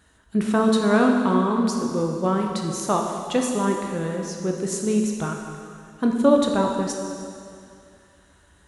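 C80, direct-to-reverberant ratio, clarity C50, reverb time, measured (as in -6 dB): 4.0 dB, 1.0 dB, 3.0 dB, 2.4 s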